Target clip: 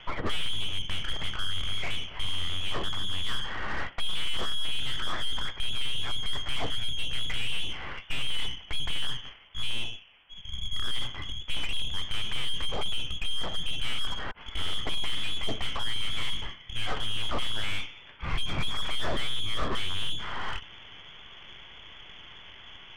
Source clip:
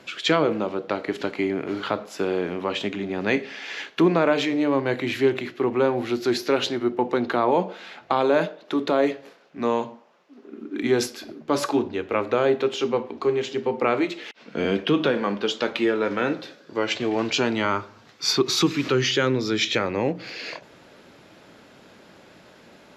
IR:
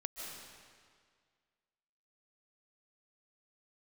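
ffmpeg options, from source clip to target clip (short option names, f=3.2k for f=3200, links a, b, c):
-af "lowpass=f=3.1k:t=q:w=0.5098,lowpass=f=3.1k:t=q:w=0.6013,lowpass=f=3.1k:t=q:w=0.9,lowpass=f=3.1k:t=q:w=2.563,afreqshift=-3600,aeval=exprs='(tanh(63.1*val(0)+0.45)-tanh(0.45))/63.1':c=same,aemphasis=mode=reproduction:type=bsi,volume=6dB"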